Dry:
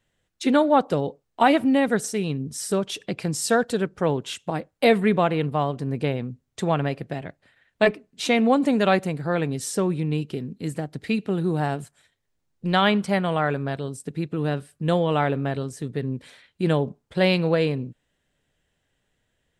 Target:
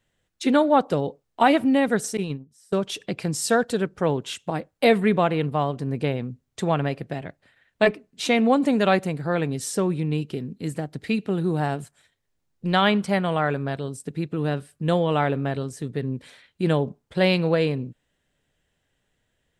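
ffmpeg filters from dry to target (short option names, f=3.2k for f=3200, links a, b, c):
-filter_complex "[0:a]asettb=1/sr,asplit=3[a][b][c];[a]atrim=end=2.174[d];[b]atrim=start=2.17:end=2.8,asetpts=PTS-STARTPTS,afade=t=in:d=0.004:c=qsin,afade=t=out:st=0.626:d=0.004:c=qsin,agate=range=-24dB:threshold=-25dB:ratio=16:detection=peak[e];[c]atrim=start=2.796[f];[d][e]acrossfade=d=0.004:c1=hsin:c2=qsin[g];[g][f]acrossfade=d=0.004:c1=qsin:c2=hsin"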